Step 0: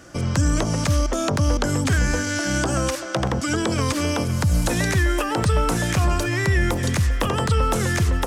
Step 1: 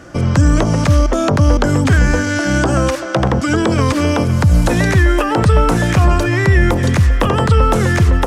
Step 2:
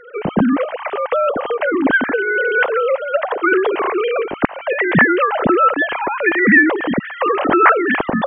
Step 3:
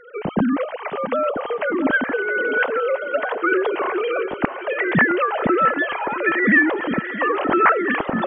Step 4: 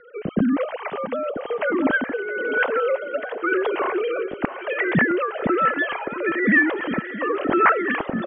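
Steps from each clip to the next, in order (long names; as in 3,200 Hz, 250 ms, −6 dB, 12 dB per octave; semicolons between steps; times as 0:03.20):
high-shelf EQ 3,600 Hz −10.5 dB; level +8.5 dB
three sine waves on the formant tracks; level −4 dB
feedback echo with a high-pass in the loop 665 ms, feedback 55%, high-pass 230 Hz, level −11 dB; level −4.5 dB
rotating-speaker cabinet horn 1 Hz; downsampling to 11,025 Hz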